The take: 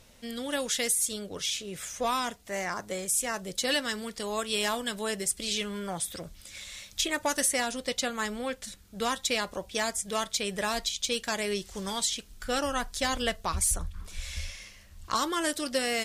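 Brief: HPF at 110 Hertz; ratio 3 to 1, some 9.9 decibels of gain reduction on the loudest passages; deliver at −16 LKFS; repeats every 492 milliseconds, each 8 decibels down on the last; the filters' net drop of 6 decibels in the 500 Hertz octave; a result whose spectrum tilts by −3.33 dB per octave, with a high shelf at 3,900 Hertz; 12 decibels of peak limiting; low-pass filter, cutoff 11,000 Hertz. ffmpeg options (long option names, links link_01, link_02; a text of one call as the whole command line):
ffmpeg -i in.wav -af "highpass=110,lowpass=11000,equalizer=frequency=500:width_type=o:gain=-7.5,highshelf=frequency=3900:gain=3.5,acompressor=threshold=-36dB:ratio=3,alimiter=level_in=6.5dB:limit=-24dB:level=0:latency=1,volume=-6.5dB,aecho=1:1:492|984|1476|1968|2460:0.398|0.159|0.0637|0.0255|0.0102,volume=24dB" out.wav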